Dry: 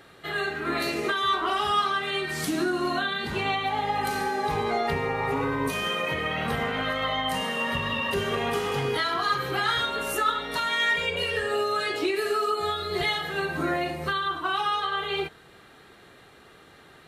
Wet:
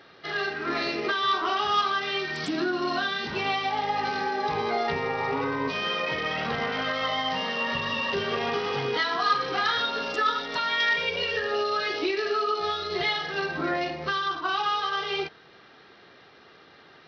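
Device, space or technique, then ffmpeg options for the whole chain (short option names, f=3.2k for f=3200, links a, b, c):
Bluetooth headset: -filter_complex "[0:a]asettb=1/sr,asplit=3[a][b][c];[a]atrim=end=8.934[d];[b]atrim=start=8.93:end=10.46,asetpts=PTS-STARTPTS,afade=t=in:d=0.004:c=qsin,afade=t=out:st=1.526:d=0.004:c=qsin,aecho=1:1:4.1:0.46,atrim=end_sample=67473[e];[c]atrim=start=10.456[f];[d][e]acrossfade=d=0.004:c1=hsin:c2=qsin[g];[g][f]acrossfade=d=0.004:c1=qsin:c2=hsin,highpass=f=200:p=1,aresample=16000,aresample=44100" -ar 44100 -c:a sbc -b:a 64k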